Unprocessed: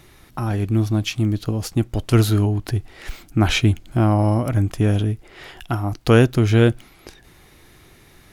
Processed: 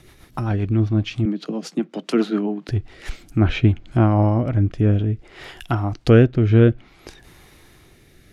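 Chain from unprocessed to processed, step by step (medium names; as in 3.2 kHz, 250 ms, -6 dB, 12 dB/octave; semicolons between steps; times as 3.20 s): low-pass that closes with the level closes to 2.6 kHz, closed at -16 dBFS; 1.25–2.69 s: steep high-pass 160 Hz 96 dB/octave; rotary cabinet horn 7.5 Hz, later 0.6 Hz, at 2.74 s; trim +2 dB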